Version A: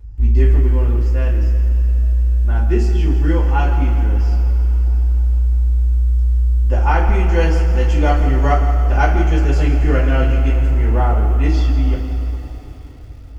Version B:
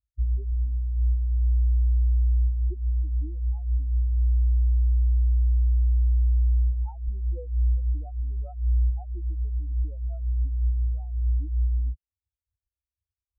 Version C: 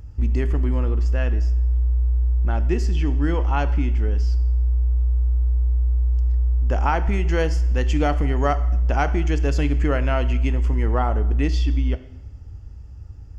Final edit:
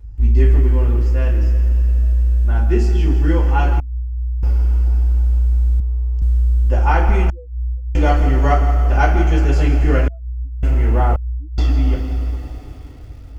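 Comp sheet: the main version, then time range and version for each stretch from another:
A
3.80–4.43 s: from B
5.80–6.22 s: from C
7.30–7.95 s: from B
10.08–10.63 s: from B
11.16–11.58 s: from B

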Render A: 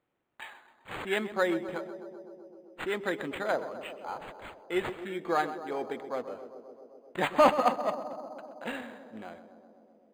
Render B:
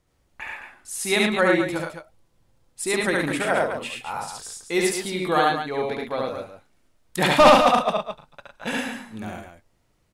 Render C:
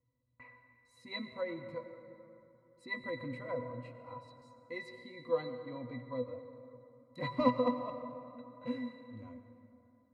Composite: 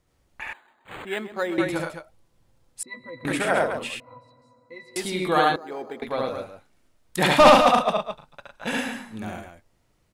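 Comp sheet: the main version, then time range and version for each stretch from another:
B
0.53–1.58 s: from A
2.83–3.25 s: from C
4.00–4.96 s: from C
5.56–6.02 s: from A

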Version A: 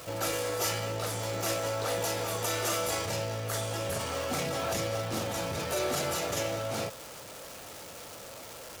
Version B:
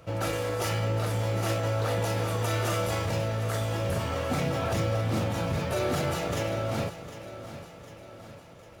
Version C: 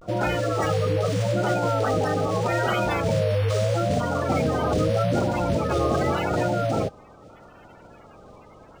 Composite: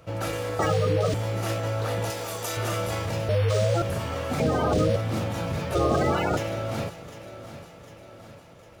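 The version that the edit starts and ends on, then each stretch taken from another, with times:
B
0.59–1.14 s: from C
2.10–2.57 s: from A
3.29–3.82 s: from C
4.40–4.96 s: from C
5.75–6.37 s: from C

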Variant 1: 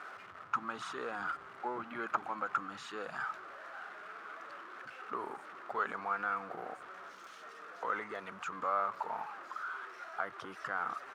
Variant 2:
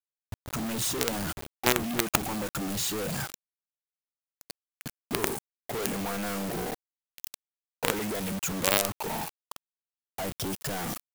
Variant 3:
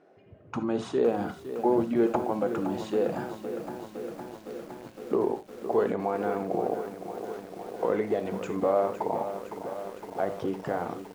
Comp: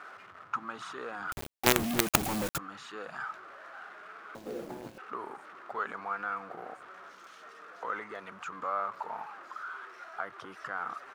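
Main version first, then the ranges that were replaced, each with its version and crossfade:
1
1.32–2.58 s: from 2
4.35–4.98 s: from 3

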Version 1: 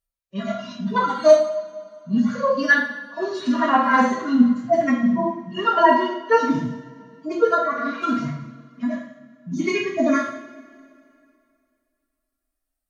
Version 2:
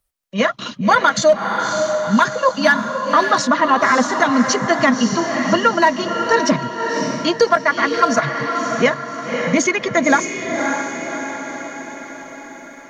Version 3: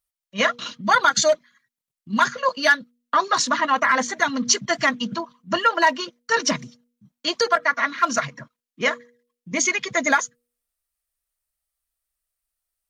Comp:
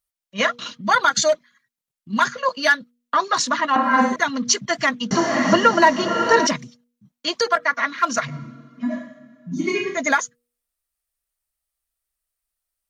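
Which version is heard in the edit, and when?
3
3.76–4.16 s: from 1
5.11–6.47 s: from 2
8.30–9.97 s: from 1, crossfade 0.10 s

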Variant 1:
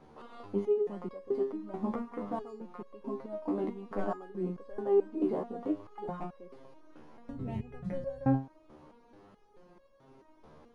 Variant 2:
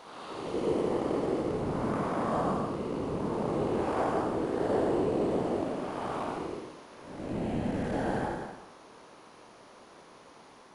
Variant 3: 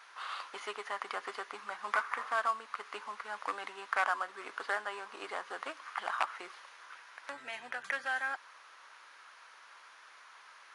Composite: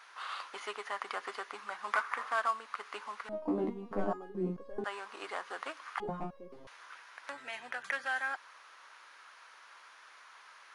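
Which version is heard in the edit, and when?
3
3.29–4.84 s: from 1
6.00–6.67 s: from 1
not used: 2

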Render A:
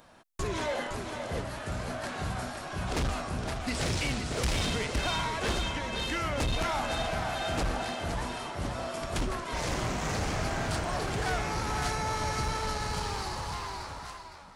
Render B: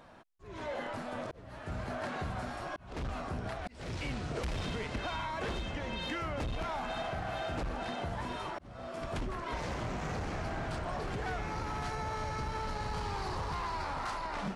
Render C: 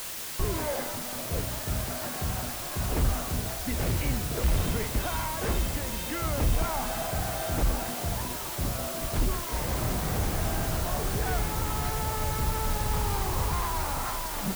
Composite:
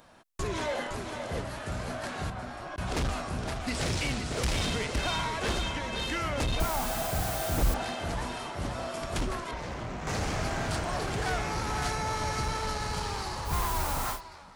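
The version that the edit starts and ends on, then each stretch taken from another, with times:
A
2.30–2.78 s: from B
6.60–7.74 s: from C
9.51–10.07 s: from B
13.49–14.16 s: from C, crossfade 0.10 s

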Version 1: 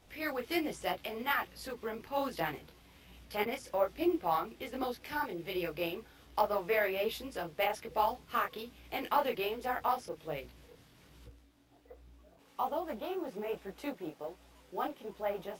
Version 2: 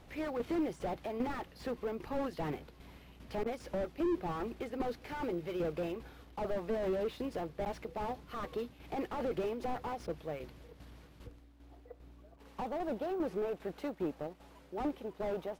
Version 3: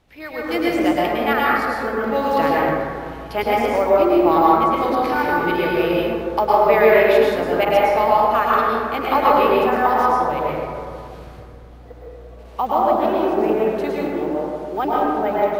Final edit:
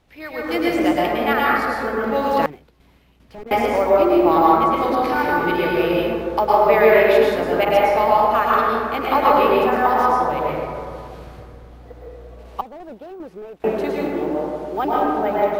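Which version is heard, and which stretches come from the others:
3
2.46–3.51 s: from 2
12.61–13.64 s: from 2
not used: 1

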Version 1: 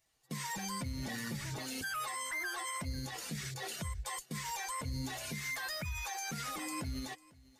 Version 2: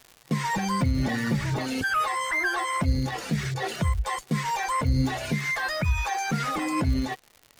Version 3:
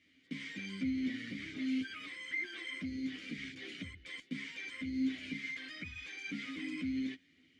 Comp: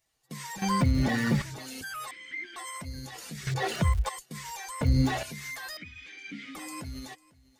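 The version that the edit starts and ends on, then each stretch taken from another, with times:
1
0.62–1.42 s: from 2
2.11–2.56 s: from 3
3.47–4.09 s: from 2
4.81–5.23 s: from 2
5.77–6.55 s: from 3

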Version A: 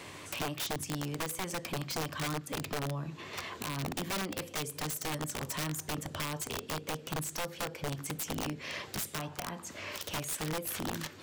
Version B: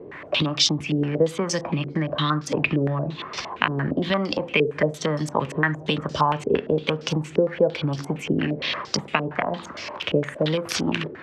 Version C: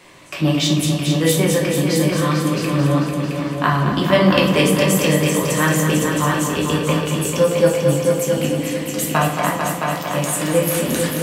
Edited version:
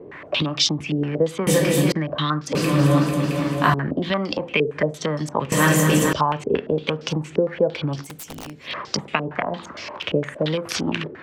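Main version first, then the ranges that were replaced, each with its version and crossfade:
B
1.47–1.92 s: from C
2.55–3.74 s: from C
5.52–6.13 s: from C
8.03–8.70 s: from A, crossfade 0.10 s

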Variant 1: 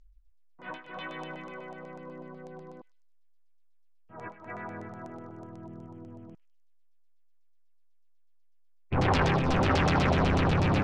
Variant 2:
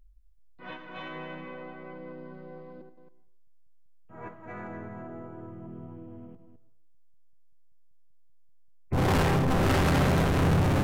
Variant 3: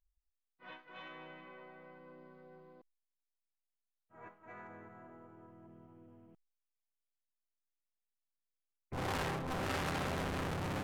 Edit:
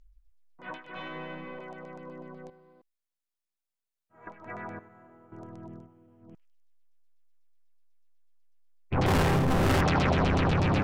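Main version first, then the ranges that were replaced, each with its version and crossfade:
1
0.95–1.59 s: from 2
2.50–4.27 s: from 3
4.79–5.32 s: from 3
5.83–6.27 s: from 3, crossfade 0.16 s
9.06–9.81 s: from 2

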